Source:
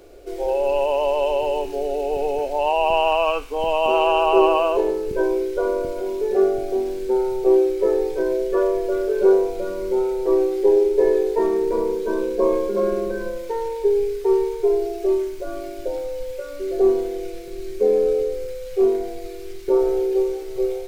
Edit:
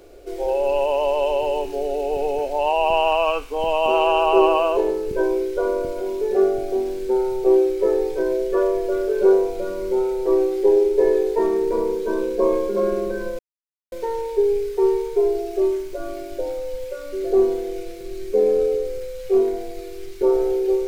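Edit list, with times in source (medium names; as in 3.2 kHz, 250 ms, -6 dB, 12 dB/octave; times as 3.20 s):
13.39 s: insert silence 0.53 s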